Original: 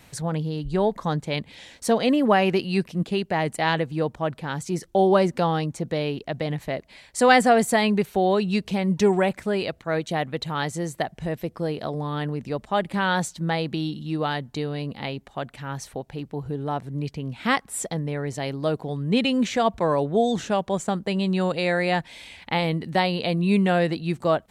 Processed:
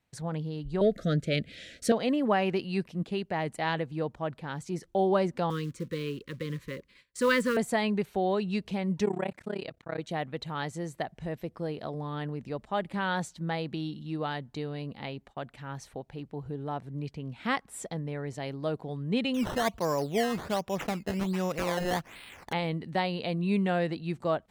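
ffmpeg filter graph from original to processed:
ffmpeg -i in.wav -filter_complex "[0:a]asettb=1/sr,asplit=3[link_01][link_02][link_03];[link_01]atrim=end=0.814[link_04];[link_02]atrim=start=0.81:end=1.92,asetpts=PTS-STARTPTS,afade=type=in:duration=0.004:curve=qsin,afade=type=out:start_time=1.106:duration=0.004:curve=qsin,equalizer=frequency=1000:width_type=o:width=0.34:gain=-12.5,acontrast=71,asuperstop=centerf=930:order=12:qfactor=1.7[link_05];[link_03]atrim=start=1.916[link_06];[link_04][link_05]acrossfade=duration=0.004:curve1=hsin:curve2=qsin[link_07];[link_07][link_06]acrossfade=duration=0.004:curve1=qsin:curve2=hsin,asettb=1/sr,asplit=3[link_08][link_09][link_10];[link_08]atrim=end=5.504[link_11];[link_09]atrim=start=5.5:end=7.57,asetpts=PTS-STARTPTS,afade=type=in:duration=0.004:curve=qsin,afade=type=out:start_time=2.066:duration=0.004:curve=qsin,acrusher=bits=5:mode=log:mix=0:aa=0.000001,asuperstop=centerf=740:order=20:qfactor=1.8[link_12];[link_10]atrim=start=7.566[link_13];[link_11][link_12]acrossfade=duration=0.004:curve1=hsin:curve2=qsin[link_14];[link_14][link_13]acrossfade=duration=0.004:curve1=qsin:curve2=hsin,asettb=1/sr,asplit=3[link_15][link_16][link_17];[link_15]atrim=end=9.054[link_18];[link_16]atrim=start=9.05:end=9.99,asetpts=PTS-STARTPTS,afade=type=in:duration=0.004:curve=qsin,afade=type=out:start_time=0.936:duration=0.004:curve=qsin,highpass=47,tremolo=f=33:d=0.974[link_19];[link_17]atrim=start=9.986[link_20];[link_18][link_19]acrossfade=duration=0.004:curve1=hsin:curve2=qsin[link_21];[link_21][link_20]acrossfade=duration=0.004:curve1=qsin:curve2=hsin,asettb=1/sr,asplit=3[link_22][link_23][link_24];[link_22]atrim=end=19.344[link_25];[link_23]atrim=start=19.34:end=22.53,asetpts=PTS-STARTPTS,afade=type=in:duration=0.004:curve=qsin,afade=type=out:start_time=3.186:duration=0.004:curve=qsin,highshelf=frequency=3800:gain=8,acrusher=samples=13:mix=1:aa=0.000001:lfo=1:lforange=13:lforate=1.3[link_26];[link_24]atrim=start=22.526[link_27];[link_25][link_26]acrossfade=duration=0.004:curve1=hsin:curve2=qsin[link_28];[link_28][link_27]acrossfade=duration=0.004:curve1=qsin:curve2=hsin,agate=range=-19dB:threshold=-46dB:ratio=16:detection=peak,highshelf=frequency=5800:gain=-6.5,volume=-7dB" out.wav

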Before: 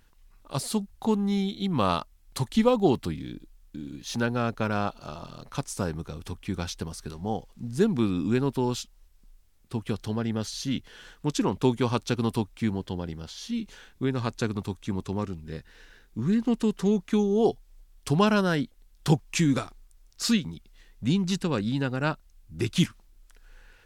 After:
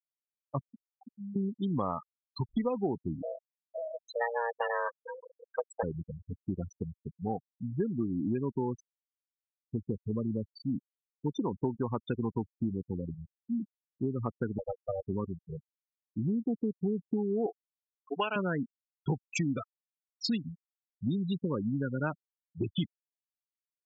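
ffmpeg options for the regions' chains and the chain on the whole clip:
ffmpeg -i in.wav -filter_complex "[0:a]asettb=1/sr,asplit=3[link_01][link_02][link_03];[link_01]atrim=end=0.694[link_04];[link_02]atrim=start=0.69:end=1.36,asetpts=PTS-STARTPTS,afade=type=in:duration=0.004:curve=qsin,afade=type=out:start_time=0.666:duration=0.004:curve=qsin,aeval=exprs='(mod(8.41*val(0)+1,2)-1)/8.41':channel_layout=same,highpass=frequency=490:poles=1,acompressor=threshold=-35dB:ratio=16:attack=3.2:release=140:knee=1:detection=peak[link_05];[link_03]atrim=start=1.356[link_06];[link_04][link_05]acrossfade=duration=0.004:curve1=hsin:curve2=qsin[link_07];[link_07][link_06]acrossfade=duration=0.004:curve1=qsin:curve2=hsin,asettb=1/sr,asplit=3[link_08][link_09][link_10];[link_08]atrim=end=3.224[link_11];[link_09]atrim=start=3.22:end=5.83,asetpts=PTS-STARTPTS,afade=type=in:duration=0.004:curve=qsin,afade=type=out:start_time=2.606:duration=0.004:curve=qsin,aecho=1:1:6.5:0.52,atrim=end_sample=115101,afreqshift=350[link_12];[link_10]atrim=start=5.826[link_13];[link_11][link_12]acrossfade=duration=0.004:curve1=hsin:curve2=qsin[link_14];[link_14][link_13]acrossfade=duration=0.004:curve1=qsin:curve2=hsin,asettb=1/sr,asplit=3[link_15][link_16][link_17];[link_15]atrim=end=14.584[link_18];[link_16]atrim=start=14.58:end=15.05,asetpts=PTS-STARTPTS,afade=type=in:duration=0.004:curve=qsin,afade=type=out:start_time=0.466:duration=0.004:curve=qsin,afreqshift=390,equalizer=frequency=100:width_type=o:width=1.9:gain=13,aeval=exprs='clip(val(0),-1,0.0119)':channel_layout=same[link_19];[link_17]atrim=start=15.046[link_20];[link_18][link_19]acrossfade=duration=0.004:curve1=hsin:curve2=qsin[link_21];[link_21][link_20]acrossfade=duration=0.004:curve1=qsin:curve2=hsin,asettb=1/sr,asplit=3[link_22][link_23][link_24];[link_22]atrim=end=17.464[link_25];[link_23]atrim=start=17.46:end=18.36,asetpts=PTS-STARTPTS,afade=type=in:duration=0.004:curve=qsin,afade=type=out:start_time=0.896:duration=0.004:curve=qsin,highpass=490,highshelf=frequency=3700:width_type=q:width=3:gain=-11.5[link_26];[link_24]atrim=start=18.356[link_27];[link_25][link_26]acrossfade=duration=0.004:curve1=hsin:curve2=qsin[link_28];[link_28][link_27]acrossfade=duration=0.004:curve1=qsin:curve2=hsin,afftfilt=real='re*gte(hypot(re,im),0.0891)':imag='im*gte(hypot(re,im),0.0891)':win_size=1024:overlap=0.75,highpass=frequency=91:poles=1,acompressor=threshold=-28dB:ratio=5" out.wav

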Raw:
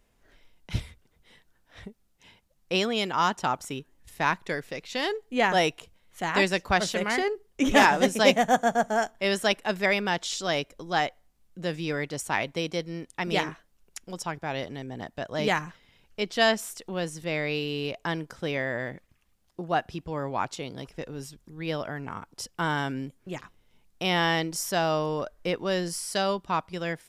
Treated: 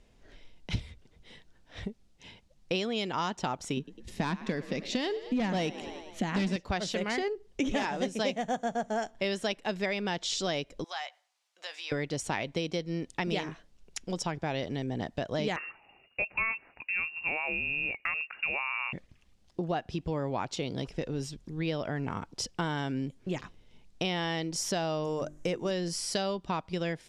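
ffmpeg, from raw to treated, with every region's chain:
ffmpeg -i in.wav -filter_complex "[0:a]asettb=1/sr,asplit=3[link_01][link_02][link_03];[link_01]atrim=end=3.774[link_04];[link_02]atrim=start=3.77:end=6.56,asetpts=PTS-STARTPTS,afade=type=in:duration=0.004:curve=qsin,afade=type=out:start_time=2.786:duration=0.004:curve=qsin,equalizer=frequency=210:width=2.3:gain=13.5,asplit=6[link_05][link_06][link_07][link_08][link_09][link_10];[link_06]adelay=102,afreqshift=37,volume=-19dB[link_11];[link_07]adelay=204,afreqshift=74,volume=-23.3dB[link_12];[link_08]adelay=306,afreqshift=111,volume=-27.6dB[link_13];[link_09]adelay=408,afreqshift=148,volume=-31.9dB[link_14];[link_10]adelay=510,afreqshift=185,volume=-36.2dB[link_15];[link_05][link_11][link_12][link_13][link_14][link_15]amix=inputs=6:normalize=0,atrim=end_sample=123039,asoftclip=type=hard:threshold=-17.5dB[link_16];[link_03]atrim=start=6.556[link_17];[link_04][link_16]acrossfade=duration=0.004:curve1=hsin:curve2=qsin[link_18];[link_18][link_17]acrossfade=duration=0.004:curve1=qsin:curve2=hsin,asettb=1/sr,asplit=3[link_19][link_20][link_21];[link_19]atrim=end=10.844[link_22];[link_20]atrim=start=10.84:end=11.92,asetpts=PTS-STARTPTS,afade=type=in:duration=0.004:curve=qsin,afade=type=out:start_time=1.076:duration=0.004:curve=qsin,highpass=frequency=800:width=0.5412,highpass=frequency=800:width=1.3066,acompressor=threshold=-42dB:ratio=2.5:attack=3.2:release=140:knee=1:detection=peak,asplit=2[link_23][link_24];[link_24]adelay=16,volume=-12.5dB[link_25];[link_23][link_25]amix=inputs=2:normalize=0,atrim=end_sample=47628[link_26];[link_21]atrim=start=11.916[link_27];[link_22][link_26]acrossfade=duration=0.004:curve1=hsin:curve2=qsin[link_28];[link_28][link_27]acrossfade=duration=0.004:curve1=qsin:curve2=hsin,asettb=1/sr,asplit=3[link_29][link_30][link_31];[link_29]atrim=end=15.564[link_32];[link_30]atrim=start=15.56:end=18.93,asetpts=PTS-STARTPTS,afade=type=in:duration=0.004:curve=qsin,afade=type=out:start_time=3.366:duration=0.004:curve=qsin,highpass=60,lowpass=frequency=2500:width_type=q:width=0.5098,lowpass=frequency=2500:width_type=q:width=0.6013,lowpass=frequency=2500:width_type=q:width=0.9,lowpass=frequency=2500:width_type=q:width=2.563,afreqshift=-2900[link_33];[link_31]atrim=start=18.926[link_34];[link_32][link_33]acrossfade=duration=0.004:curve1=hsin:curve2=qsin[link_35];[link_35][link_34]acrossfade=duration=0.004:curve1=qsin:curve2=hsin,asettb=1/sr,asplit=3[link_36][link_37][link_38];[link_36]atrim=end=25.044[link_39];[link_37]atrim=start=25.04:end=25.71,asetpts=PTS-STARTPTS,afade=type=in:duration=0.004:curve=qsin,afade=type=out:start_time=0.666:duration=0.004:curve=qsin,highshelf=frequency=5500:width_type=q:width=3:gain=7,bandreject=frequency=50:width_type=h:width=6,bandreject=frequency=100:width_type=h:width=6,bandreject=frequency=150:width_type=h:width=6,bandreject=frequency=200:width_type=h:width=6,bandreject=frequency=250:width_type=h:width=6,bandreject=frequency=300:width_type=h:width=6,bandreject=frequency=350:width_type=h:width=6[link_40];[link_38]atrim=start=25.706[link_41];[link_39][link_40]acrossfade=duration=0.004:curve1=hsin:curve2=qsin[link_42];[link_42][link_41]acrossfade=duration=0.004:curve1=qsin:curve2=hsin,lowpass=6100,equalizer=frequency=1300:width=0.87:gain=-6.5,acompressor=threshold=-35dB:ratio=6,volume=6.5dB" out.wav

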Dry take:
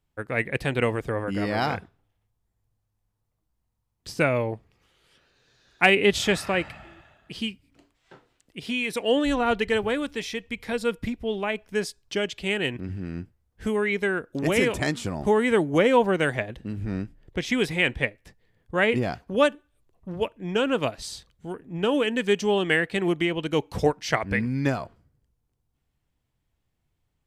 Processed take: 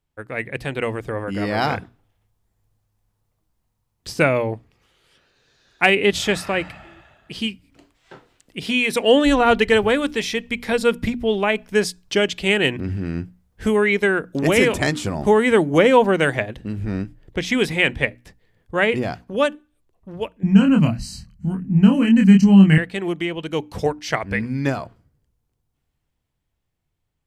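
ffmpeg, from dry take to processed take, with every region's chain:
ffmpeg -i in.wav -filter_complex "[0:a]asettb=1/sr,asplit=3[link_01][link_02][link_03];[link_01]atrim=end=20.434[link_04];[link_02]atrim=start=20.43:end=22.78,asetpts=PTS-STARTPTS,afade=type=in:duration=0.004:curve=qsin,afade=type=out:start_time=2.346:duration=0.004:curve=qsin,asuperstop=centerf=3500:order=12:qfactor=4.3,lowshelf=frequency=290:width_type=q:width=3:gain=13,asplit=2[link_05][link_06];[link_06]adelay=26,volume=-3.5dB[link_07];[link_05][link_07]amix=inputs=2:normalize=0,atrim=end_sample=103635[link_08];[link_03]atrim=start=22.776[link_09];[link_04][link_08]acrossfade=duration=0.004:curve1=hsin:curve2=qsin[link_10];[link_10][link_09]acrossfade=duration=0.004:curve1=qsin:curve2=hsin,bandreject=frequency=60:width_type=h:width=6,bandreject=frequency=120:width_type=h:width=6,bandreject=frequency=180:width_type=h:width=6,bandreject=frequency=240:width_type=h:width=6,bandreject=frequency=300:width_type=h:width=6,dynaudnorm=framelen=100:gausssize=31:maxgain=11.5dB,volume=-1dB" out.wav

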